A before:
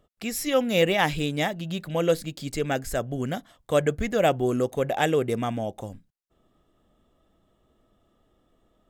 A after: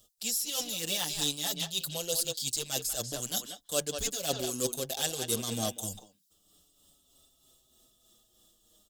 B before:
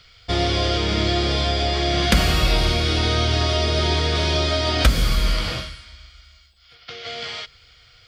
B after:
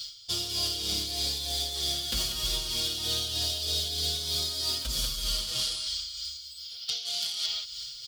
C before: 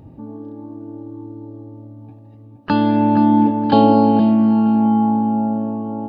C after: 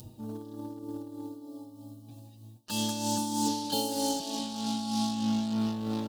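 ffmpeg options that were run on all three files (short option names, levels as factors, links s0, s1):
-filter_complex "[0:a]asplit=2[s0][s1];[s1]adelay=190,highpass=300,lowpass=3400,asoftclip=type=hard:threshold=0.316,volume=0.398[s2];[s0][s2]amix=inputs=2:normalize=0,acrossover=split=3600[s3][s4];[s4]acompressor=threshold=0.0126:ratio=4:attack=1:release=60[s5];[s3][s5]amix=inputs=2:normalize=0,asplit=2[s6][s7];[s7]acrusher=bits=3:mix=0:aa=0.5,volume=0.447[s8];[s6][s8]amix=inputs=2:normalize=0,aexciter=amount=11.4:drive=8.2:freq=3300,areverse,acompressor=threshold=0.1:ratio=16,areverse,tremolo=f=3.2:d=0.48,asplit=2[s9][s10];[s10]adelay=6,afreqshift=-0.36[s11];[s9][s11]amix=inputs=2:normalize=1,volume=0.75"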